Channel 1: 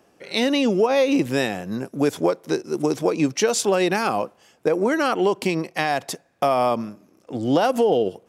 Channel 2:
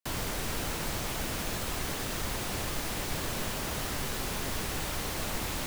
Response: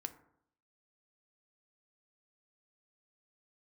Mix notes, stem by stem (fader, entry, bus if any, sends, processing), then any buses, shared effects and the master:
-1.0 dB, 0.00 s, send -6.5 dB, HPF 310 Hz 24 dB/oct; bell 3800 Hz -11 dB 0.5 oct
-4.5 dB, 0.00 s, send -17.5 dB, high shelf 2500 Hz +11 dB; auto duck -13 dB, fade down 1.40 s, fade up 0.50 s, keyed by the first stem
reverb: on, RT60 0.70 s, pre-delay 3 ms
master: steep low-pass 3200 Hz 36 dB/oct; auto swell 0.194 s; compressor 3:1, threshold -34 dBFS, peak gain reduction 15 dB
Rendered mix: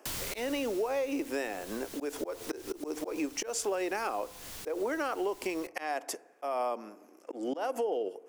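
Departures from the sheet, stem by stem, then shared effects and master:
stem 2: send -17.5 dB -> -23.5 dB; master: missing steep low-pass 3200 Hz 36 dB/oct

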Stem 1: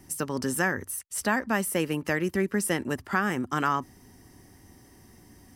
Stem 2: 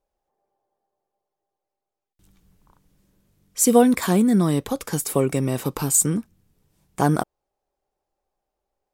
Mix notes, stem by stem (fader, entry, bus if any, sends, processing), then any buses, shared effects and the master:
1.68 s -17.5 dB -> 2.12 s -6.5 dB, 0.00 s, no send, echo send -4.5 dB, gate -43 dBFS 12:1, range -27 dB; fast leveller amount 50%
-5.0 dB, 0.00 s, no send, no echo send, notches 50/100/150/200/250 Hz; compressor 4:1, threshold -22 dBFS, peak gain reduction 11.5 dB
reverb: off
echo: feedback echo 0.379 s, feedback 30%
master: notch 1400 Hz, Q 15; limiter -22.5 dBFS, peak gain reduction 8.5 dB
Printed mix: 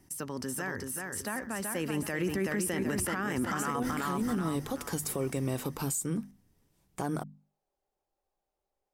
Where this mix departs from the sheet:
stem 1 -17.5 dB -> -10.5 dB; master: missing notch 1400 Hz, Q 15

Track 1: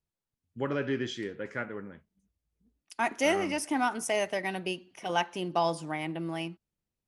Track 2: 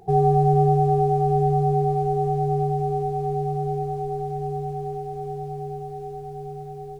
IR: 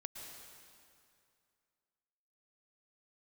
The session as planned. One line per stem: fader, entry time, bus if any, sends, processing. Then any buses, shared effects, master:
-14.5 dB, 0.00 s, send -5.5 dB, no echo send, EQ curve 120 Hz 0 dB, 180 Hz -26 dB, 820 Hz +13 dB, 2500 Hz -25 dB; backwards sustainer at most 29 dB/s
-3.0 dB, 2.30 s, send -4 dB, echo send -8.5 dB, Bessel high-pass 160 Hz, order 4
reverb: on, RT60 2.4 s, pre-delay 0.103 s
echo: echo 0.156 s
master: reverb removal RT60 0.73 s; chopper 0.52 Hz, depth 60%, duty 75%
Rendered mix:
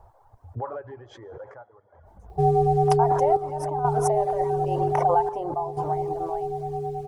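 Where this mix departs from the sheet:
stem 1 -14.5 dB -> -5.0 dB; stem 2: missing Bessel high-pass 160 Hz, order 4

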